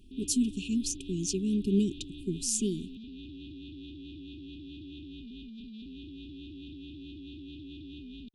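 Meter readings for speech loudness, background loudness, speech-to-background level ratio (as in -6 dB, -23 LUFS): -31.0 LUFS, -45.5 LUFS, 14.5 dB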